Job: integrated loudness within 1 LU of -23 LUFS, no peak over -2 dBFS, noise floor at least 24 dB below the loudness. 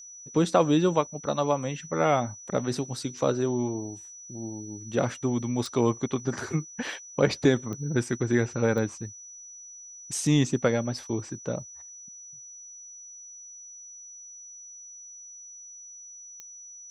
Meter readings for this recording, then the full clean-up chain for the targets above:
clicks found 4; steady tone 5.9 kHz; tone level -43 dBFS; loudness -27.5 LUFS; peak level -7.5 dBFS; loudness target -23.0 LUFS
-> de-click; band-stop 5.9 kHz, Q 30; trim +4.5 dB

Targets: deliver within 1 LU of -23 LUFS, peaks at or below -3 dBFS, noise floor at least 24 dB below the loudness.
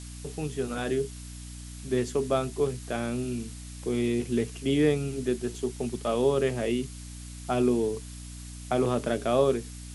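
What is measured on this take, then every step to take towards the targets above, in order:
hum 60 Hz; highest harmonic 300 Hz; hum level -39 dBFS; noise floor -42 dBFS; noise floor target -53 dBFS; loudness -28.5 LUFS; peak level -11.5 dBFS; loudness target -23.0 LUFS
-> hum notches 60/120/180/240/300 Hz; noise reduction 11 dB, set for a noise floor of -42 dBFS; trim +5.5 dB

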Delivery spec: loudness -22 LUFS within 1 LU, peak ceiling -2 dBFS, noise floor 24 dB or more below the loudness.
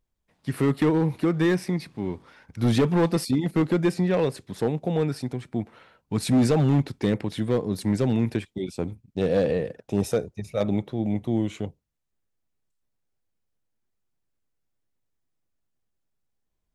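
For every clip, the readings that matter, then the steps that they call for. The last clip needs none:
clipped samples 1.4%; clipping level -15.0 dBFS; loudness -25.5 LUFS; peak level -15.0 dBFS; loudness target -22.0 LUFS
-> clip repair -15 dBFS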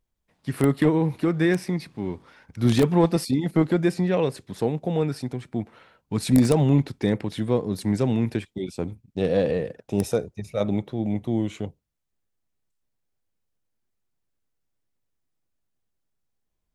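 clipped samples 0.0%; loudness -24.5 LUFS; peak level -6.0 dBFS; loudness target -22.0 LUFS
-> trim +2.5 dB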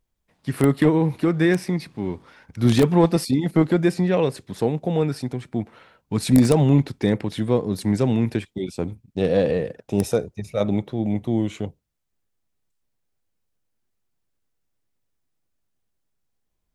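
loudness -22.0 LUFS; peak level -3.5 dBFS; noise floor -75 dBFS

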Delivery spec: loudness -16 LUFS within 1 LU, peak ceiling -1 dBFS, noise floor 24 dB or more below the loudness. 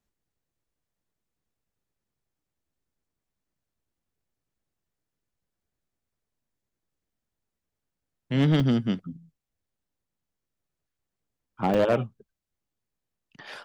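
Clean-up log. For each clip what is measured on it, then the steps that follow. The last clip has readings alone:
clipped samples 0.3%; clipping level -16.0 dBFS; dropouts 2; longest dropout 2.8 ms; loudness -25.0 LUFS; peak level -16.0 dBFS; loudness target -16.0 LUFS
-> clip repair -16 dBFS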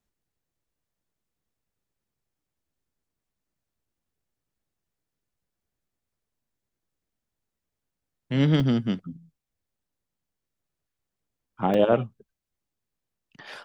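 clipped samples 0.0%; dropouts 2; longest dropout 2.8 ms
-> interpolate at 8.60/11.74 s, 2.8 ms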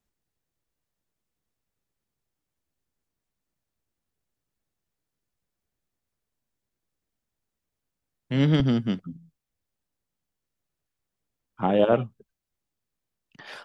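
dropouts 0; loudness -24.0 LUFS; peak level -7.5 dBFS; loudness target -16.0 LUFS
-> trim +8 dB; peak limiter -1 dBFS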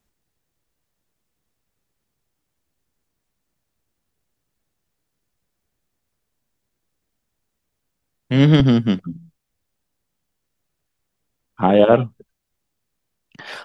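loudness -16.0 LUFS; peak level -1.0 dBFS; noise floor -77 dBFS

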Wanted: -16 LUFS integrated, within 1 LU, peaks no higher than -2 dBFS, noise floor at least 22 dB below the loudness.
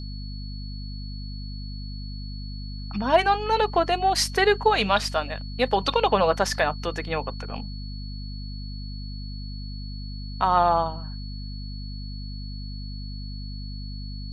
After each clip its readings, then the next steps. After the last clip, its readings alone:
hum 50 Hz; highest harmonic 250 Hz; hum level -32 dBFS; steady tone 4.4 kHz; tone level -43 dBFS; loudness -27.0 LUFS; peak level -6.5 dBFS; loudness target -16.0 LUFS
-> de-hum 50 Hz, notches 5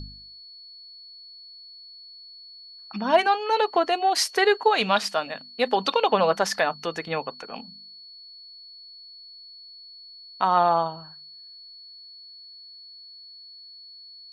hum not found; steady tone 4.4 kHz; tone level -43 dBFS
-> band-stop 4.4 kHz, Q 30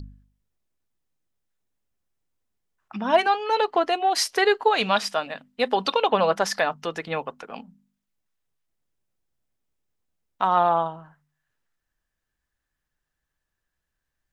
steady tone not found; loudness -23.0 LUFS; peak level -6.5 dBFS; loudness target -16.0 LUFS
-> trim +7 dB; peak limiter -2 dBFS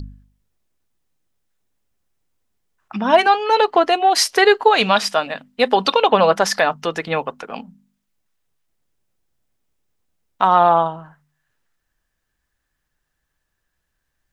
loudness -16.5 LUFS; peak level -2.0 dBFS; noise floor -75 dBFS

